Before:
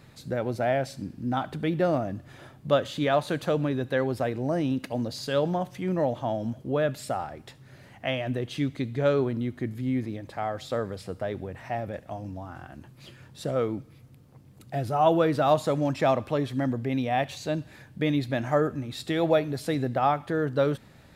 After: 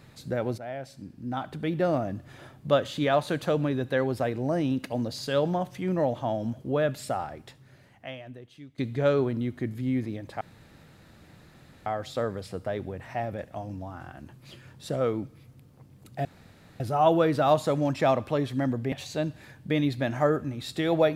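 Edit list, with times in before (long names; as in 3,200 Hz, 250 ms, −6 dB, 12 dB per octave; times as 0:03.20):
0:00.58–0:02.06: fade in, from −14 dB
0:07.33–0:08.78: fade out quadratic, to −19.5 dB
0:10.41: splice in room tone 1.45 s
0:14.80: splice in room tone 0.55 s
0:16.92–0:17.23: remove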